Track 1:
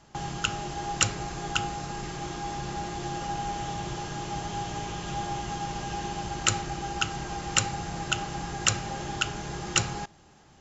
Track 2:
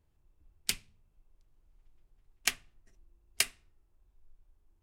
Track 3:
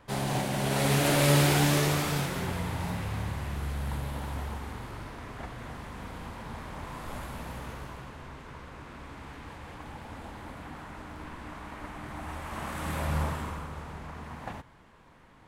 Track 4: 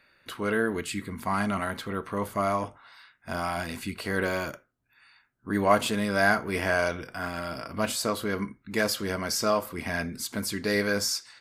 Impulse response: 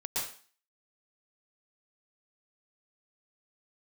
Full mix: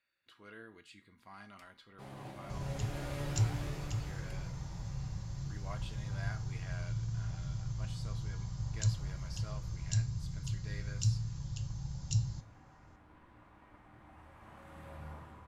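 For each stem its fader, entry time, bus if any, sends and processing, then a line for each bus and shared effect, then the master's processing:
+2.5 dB, 2.35 s, no send, Chebyshev band-stop 140–4500 Hz, order 3; bass shelf 180 Hz +8.5 dB
-19.5 dB, 0.90 s, no send, none
-9.0 dB, 1.90 s, no send, none
-19.0 dB, 0.00 s, no send, peaking EQ 4.1 kHz +13.5 dB 2.4 oct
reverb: none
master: treble shelf 3.6 kHz -10.5 dB; feedback comb 110 Hz, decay 0.32 s, harmonics odd, mix 70%

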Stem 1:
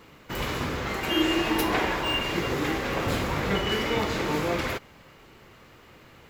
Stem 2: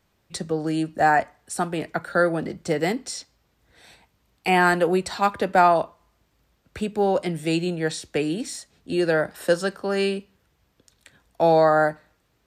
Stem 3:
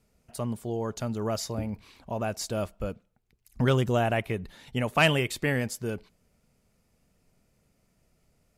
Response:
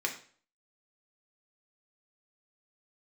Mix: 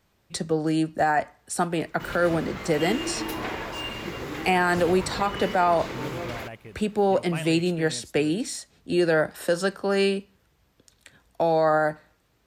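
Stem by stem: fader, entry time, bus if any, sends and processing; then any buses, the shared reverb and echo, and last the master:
-6.5 dB, 1.70 s, no send, none
+1.0 dB, 0.00 s, no send, none
-13.5 dB, 2.35 s, no send, none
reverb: none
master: peak limiter -12.5 dBFS, peak gain reduction 8 dB

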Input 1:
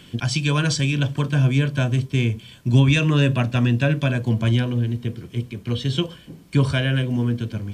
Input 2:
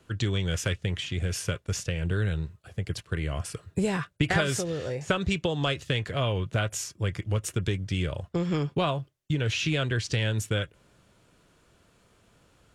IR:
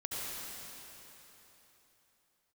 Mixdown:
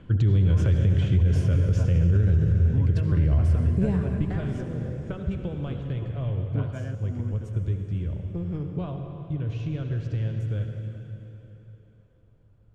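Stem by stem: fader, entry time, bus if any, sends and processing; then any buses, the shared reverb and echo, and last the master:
-1.5 dB, 0.00 s, no send, low-pass 1.2 kHz 12 dB/octave; trance gate "xx.xxxxxx.x" 162 bpm; auto duck -12 dB, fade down 0.30 s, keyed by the second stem
3.61 s -5.5 dB -> 4.28 s -17.5 dB, 0.00 s, send -3.5 dB, tilt EQ -4.5 dB/octave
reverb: on, RT60 3.7 s, pre-delay 63 ms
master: peak limiter -13.5 dBFS, peak gain reduction 8.5 dB

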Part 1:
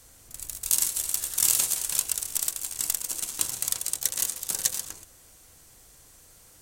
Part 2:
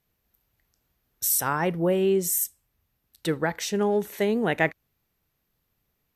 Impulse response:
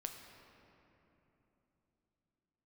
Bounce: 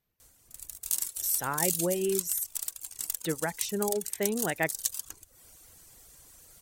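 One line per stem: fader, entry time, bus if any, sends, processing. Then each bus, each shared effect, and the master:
-0.5 dB, 0.20 s, no send, treble shelf 11 kHz +6.5 dB; auto duck -8 dB, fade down 0.30 s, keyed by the second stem
-5.5 dB, 0.00 s, no send, none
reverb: none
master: reverb removal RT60 0.83 s

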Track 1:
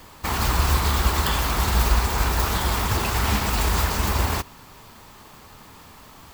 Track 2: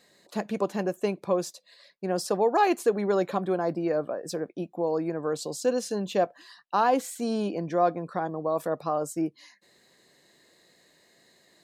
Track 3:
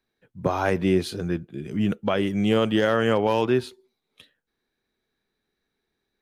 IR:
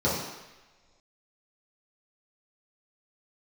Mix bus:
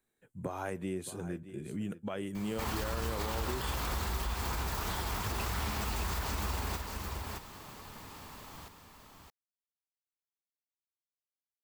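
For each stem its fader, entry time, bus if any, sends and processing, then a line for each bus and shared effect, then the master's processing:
-3.5 dB, 2.35 s, no bus, no send, echo send -6 dB, compression 6:1, threshold -27 dBFS, peak gain reduction 13 dB
mute
-4.0 dB, 0.00 s, bus A, no send, echo send -24 dB, resonant high shelf 6.3 kHz +7.5 dB, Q 3
bus A: 0.0 dB, compression 2.5:1, threshold -39 dBFS, peak gain reduction 13 dB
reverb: none
echo: delay 618 ms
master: peak limiter -25 dBFS, peak gain reduction 6.5 dB

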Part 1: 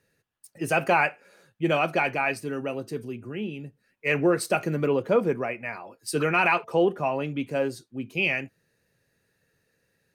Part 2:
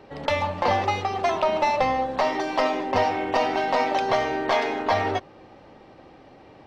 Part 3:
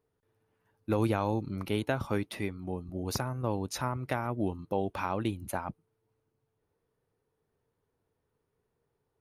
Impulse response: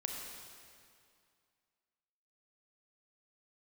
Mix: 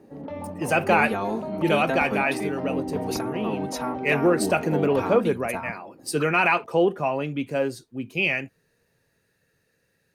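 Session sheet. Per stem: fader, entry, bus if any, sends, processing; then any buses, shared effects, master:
+1.5 dB, 0.00 s, no send, none
+3.0 dB, 0.00 s, no send, peak limiter -17 dBFS, peak gain reduction 7 dB; band-pass filter 240 Hz, Q 1.5
-0.5 dB, 0.00 s, no send, comb 4.4 ms, depth 98%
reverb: none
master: none

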